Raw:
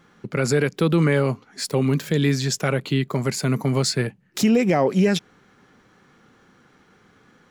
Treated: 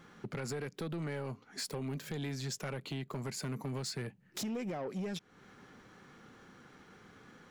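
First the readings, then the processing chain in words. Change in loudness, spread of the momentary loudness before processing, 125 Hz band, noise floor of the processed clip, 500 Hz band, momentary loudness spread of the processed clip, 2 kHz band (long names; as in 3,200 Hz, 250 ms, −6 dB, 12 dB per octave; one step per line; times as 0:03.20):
−18.0 dB, 7 LU, −18.0 dB, −64 dBFS, −19.5 dB, 19 LU, −18.0 dB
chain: downward compressor 4 to 1, threshold −34 dBFS, peak gain reduction 16.5 dB
soft clipping −31 dBFS, distortion −13 dB
level −1.5 dB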